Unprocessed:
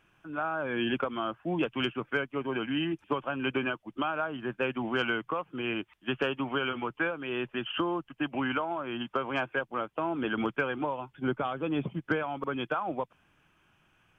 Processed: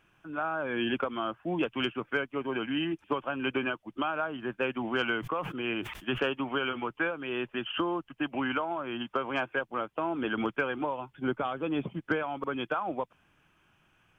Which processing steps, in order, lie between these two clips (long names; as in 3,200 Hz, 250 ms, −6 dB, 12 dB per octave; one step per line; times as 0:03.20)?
dynamic equaliser 140 Hz, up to −4 dB, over −48 dBFS, Q 2.2
0:05.18–0:06.33: level that may fall only so fast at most 67 dB per second